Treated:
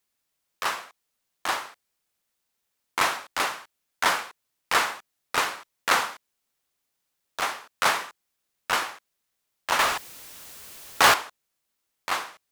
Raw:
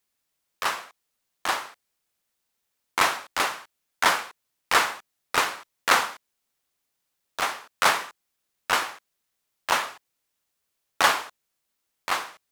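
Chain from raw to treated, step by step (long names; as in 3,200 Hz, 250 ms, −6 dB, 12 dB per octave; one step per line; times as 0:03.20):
in parallel at −7 dB: gain into a clipping stage and back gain 23 dB
0:09.79–0:11.14: on the sum: power curve on the samples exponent 0.5
level −3.5 dB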